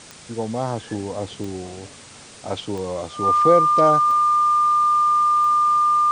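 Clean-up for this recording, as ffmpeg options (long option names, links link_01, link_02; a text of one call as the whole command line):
ffmpeg -i in.wav -af "adeclick=threshold=4,bandreject=frequency=1200:width=30,afwtdn=0.0089" out.wav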